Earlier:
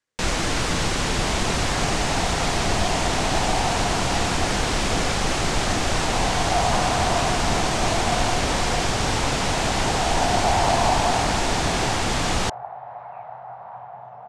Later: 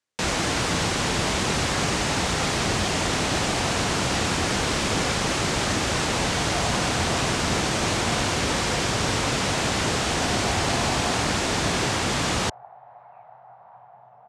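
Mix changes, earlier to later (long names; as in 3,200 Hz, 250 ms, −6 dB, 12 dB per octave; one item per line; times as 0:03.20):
speech −6.0 dB
second sound −10.5 dB
master: add high-pass filter 70 Hz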